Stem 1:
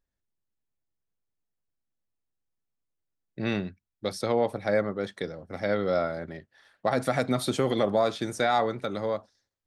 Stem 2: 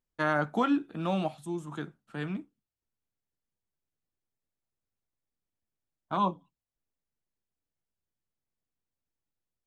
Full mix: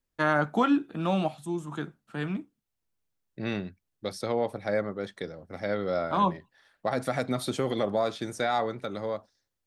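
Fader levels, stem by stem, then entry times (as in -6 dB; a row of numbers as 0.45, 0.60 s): -3.0, +3.0 dB; 0.00, 0.00 s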